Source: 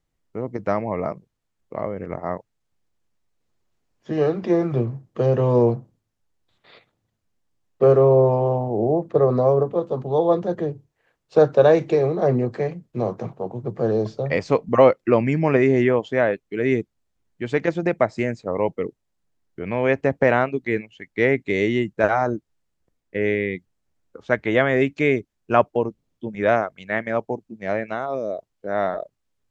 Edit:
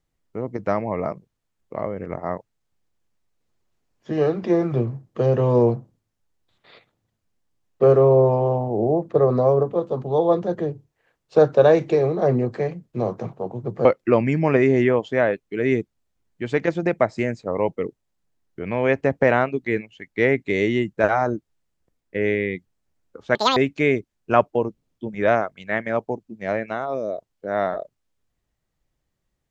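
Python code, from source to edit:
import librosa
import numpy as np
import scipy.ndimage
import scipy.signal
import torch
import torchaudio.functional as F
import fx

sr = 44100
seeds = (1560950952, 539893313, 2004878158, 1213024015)

y = fx.edit(x, sr, fx.cut(start_s=13.85, length_s=1.0),
    fx.speed_span(start_s=24.35, length_s=0.42, speed=1.95), tone=tone)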